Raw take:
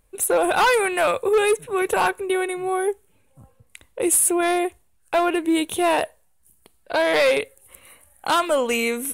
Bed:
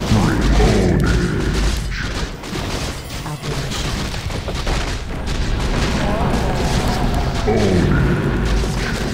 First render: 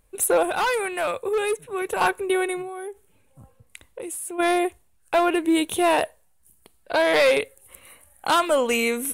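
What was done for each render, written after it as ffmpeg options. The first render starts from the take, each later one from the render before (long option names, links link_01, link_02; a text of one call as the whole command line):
ffmpeg -i in.wav -filter_complex "[0:a]asplit=3[link_01][link_02][link_03];[link_01]afade=type=out:start_time=2.61:duration=0.02[link_04];[link_02]acompressor=threshold=-30dB:ratio=16:attack=3.2:release=140:knee=1:detection=peak,afade=type=in:start_time=2.61:duration=0.02,afade=type=out:start_time=4.38:duration=0.02[link_05];[link_03]afade=type=in:start_time=4.38:duration=0.02[link_06];[link_04][link_05][link_06]amix=inputs=3:normalize=0,asplit=3[link_07][link_08][link_09];[link_07]atrim=end=0.432[link_10];[link_08]atrim=start=0.428:end=2.012,asetpts=PTS-STARTPTS,volume=-5.5dB[link_11];[link_09]atrim=start=2.008[link_12];[link_10][link_11]acrossfade=duration=0.004:curve1=hsin:curve2=hsin[link_13];[link_13][link_12]acrossfade=duration=0.004:curve1=hsin:curve2=hsin" out.wav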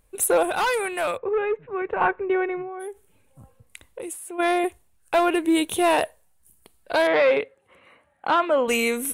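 ffmpeg -i in.wav -filter_complex "[0:a]asplit=3[link_01][link_02][link_03];[link_01]afade=type=out:start_time=1.16:duration=0.02[link_04];[link_02]lowpass=frequency=2200:width=0.5412,lowpass=frequency=2200:width=1.3066,afade=type=in:start_time=1.16:duration=0.02,afade=type=out:start_time=2.79:duration=0.02[link_05];[link_03]afade=type=in:start_time=2.79:duration=0.02[link_06];[link_04][link_05][link_06]amix=inputs=3:normalize=0,asettb=1/sr,asplit=3[link_07][link_08][link_09];[link_07]atrim=end=4.134[link_10];[link_08]atrim=start=4.13:end=4.64,asetpts=PTS-STARTPTS,afade=type=in:duration=0.004:curve=qsin,afade=type=out:start_time=0.506:duration=0.004:curve=qsin,bass=frequency=250:gain=-7,treble=frequency=4000:gain=-6[link_11];[link_09]atrim=start=4.636[link_12];[link_10][link_11]acrossfade=duration=0.004:curve1=hsin:curve2=qsin[link_13];[link_13][link_12]acrossfade=duration=0.004:curve1=qsin:curve2=hsin,asettb=1/sr,asplit=3[link_14][link_15][link_16];[link_14]atrim=end=7.074[link_17];[link_15]atrim=start=7.07:end=8.68,asetpts=PTS-STARTPTS,afade=type=in:duration=0.004:curve=qsin,afade=type=out:start_time=1.606:duration=0.004:curve=qsin,highpass=140,lowpass=2300[link_18];[link_16]atrim=start=8.676[link_19];[link_17][link_18]acrossfade=duration=0.004:curve1=hsin:curve2=qsin[link_20];[link_20][link_19]acrossfade=duration=0.004:curve1=qsin:curve2=hsin" out.wav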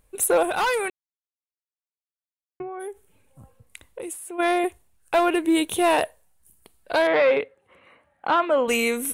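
ffmpeg -i in.wav -filter_complex "[0:a]asettb=1/sr,asplit=3[link_01][link_02][link_03];[link_01]atrim=end=6.994[link_04];[link_02]atrim=start=6.99:end=8.5,asetpts=PTS-STARTPTS,afade=type=in:duration=0.004:curve=qsin,afade=type=out:start_time=1.506:duration=0.004:curve=qsin,highshelf=frequency=5800:gain=-5.5[link_05];[link_03]atrim=start=8.496[link_06];[link_04][link_05]acrossfade=duration=0.004:curve1=hsin:curve2=qsin[link_07];[link_07][link_06]acrossfade=duration=0.004:curve1=qsin:curve2=hsin,asplit=3[link_08][link_09][link_10];[link_08]atrim=end=0.9,asetpts=PTS-STARTPTS,afade=type=out:start_time=0.896:duration=0.004:curve=hsin[link_11];[link_09]atrim=start=0.9:end=2.6,asetpts=PTS-STARTPTS,volume=0[link_12];[link_10]atrim=start=2.6,asetpts=PTS-STARTPTS,afade=type=in:duration=0.004:curve=hsin[link_13];[link_11][link_12][link_13]concat=n=3:v=0:a=1" out.wav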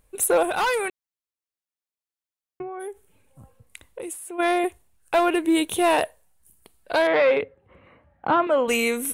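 ffmpeg -i in.wav -filter_complex "[0:a]asettb=1/sr,asplit=3[link_01][link_02][link_03];[link_01]atrim=end=7.424[link_04];[link_02]atrim=start=7.42:end=8.47,asetpts=PTS-STARTPTS,afade=type=in:duration=0.004:curve=qsin,afade=type=out:start_time=1.046:duration=0.004:curve=qsin,aemphasis=mode=reproduction:type=riaa[link_05];[link_03]atrim=start=8.466[link_06];[link_04][link_05]acrossfade=duration=0.004:curve1=hsin:curve2=qsin[link_07];[link_07][link_06]acrossfade=duration=0.004:curve1=qsin:curve2=hsin" out.wav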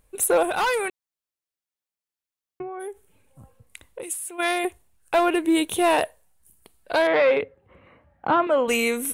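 ffmpeg -i in.wav -filter_complex "[0:a]asettb=1/sr,asplit=3[link_01][link_02][link_03];[link_01]atrim=end=4.034[link_04];[link_02]atrim=start=4.03:end=4.65,asetpts=PTS-STARTPTS,afade=type=in:duration=0.004:curve=qsin,afade=type=out:start_time=0.616:duration=0.004:curve=qsin,tiltshelf=frequency=1400:gain=-6[link_05];[link_03]atrim=start=4.646[link_06];[link_04][link_05]acrossfade=duration=0.004:curve1=hsin:curve2=qsin[link_07];[link_07][link_06]acrossfade=duration=0.004:curve1=qsin:curve2=hsin" out.wav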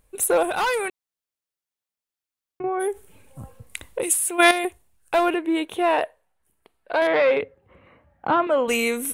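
ffmpeg -i in.wav -filter_complex "[0:a]asettb=1/sr,asplit=3[link_01][link_02][link_03];[link_01]atrim=end=5.344[link_04];[link_02]atrim=start=5.34:end=7.02,asetpts=PTS-STARTPTS,afade=type=in:duration=0.004:curve=qsin,afade=type=out:start_time=1.676:duration=0.004:curve=qsin,bass=frequency=250:gain=-10,treble=frequency=4000:gain=-15[link_05];[link_03]atrim=start=7.016[link_06];[link_04][link_05]acrossfade=duration=0.004:curve1=hsin:curve2=qsin[link_07];[link_07][link_06]acrossfade=duration=0.004:curve1=qsin:curve2=hsin,asplit=3[link_08][link_09][link_10];[link_08]atrim=end=2.642[link_11];[link_09]atrim=start=2.638:end=4.512,asetpts=PTS-STARTPTS,volume=9.5dB[link_12];[link_10]atrim=start=4.508[link_13];[link_11][link_12]acrossfade=duration=0.004:curve1=hsin:curve2=hsin[link_14];[link_14][link_13]acrossfade=duration=0.004:curve1=hsin:curve2=hsin" out.wav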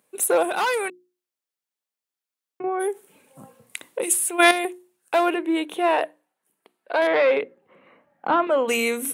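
ffmpeg -i in.wav -af "highpass=frequency=180:width=0.5412,highpass=frequency=180:width=1.3066,bandreject=frequency=60:width_type=h:width=6,bandreject=frequency=120:width_type=h:width=6,bandreject=frequency=180:width_type=h:width=6,bandreject=frequency=240:width_type=h:width=6,bandreject=frequency=300:width_type=h:width=6,bandreject=frequency=360:width_type=h:width=6" out.wav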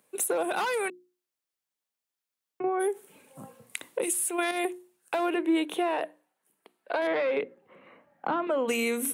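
ffmpeg -i in.wav -filter_complex "[0:a]alimiter=limit=-13.5dB:level=0:latency=1:release=88,acrossover=split=300[link_01][link_02];[link_02]acompressor=threshold=-27dB:ratio=4[link_03];[link_01][link_03]amix=inputs=2:normalize=0" out.wav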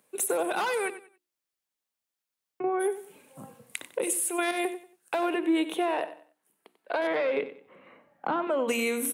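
ffmpeg -i in.wav -af "aecho=1:1:93|186|279:0.211|0.0592|0.0166" out.wav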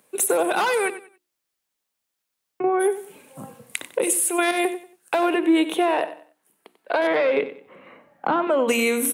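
ffmpeg -i in.wav -af "volume=7dB" out.wav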